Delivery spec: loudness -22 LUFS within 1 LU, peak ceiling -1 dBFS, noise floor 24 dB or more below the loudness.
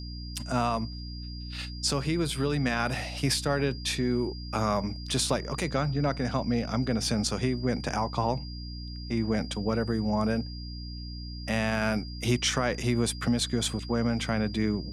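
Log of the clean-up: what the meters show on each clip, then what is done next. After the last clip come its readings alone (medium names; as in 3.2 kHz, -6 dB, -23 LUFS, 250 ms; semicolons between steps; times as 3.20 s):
hum 60 Hz; highest harmonic 300 Hz; hum level -36 dBFS; steady tone 4.8 kHz; tone level -44 dBFS; loudness -29.0 LUFS; peak level -13.5 dBFS; loudness target -22.0 LUFS
-> hum notches 60/120/180/240/300 Hz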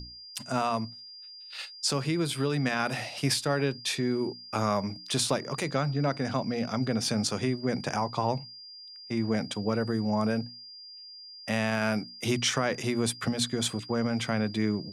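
hum not found; steady tone 4.8 kHz; tone level -44 dBFS
-> band-stop 4.8 kHz, Q 30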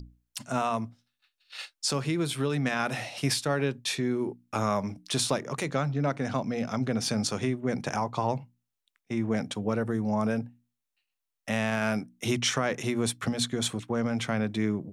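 steady tone not found; loudness -29.5 LUFS; peak level -13.0 dBFS; loudness target -22.0 LUFS
-> trim +7.5 dB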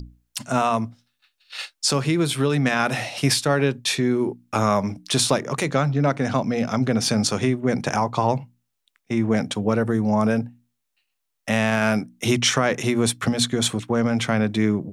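loudness -22.0 LUFS; peak level -5.5 dBFS; noise floor -77 dBFS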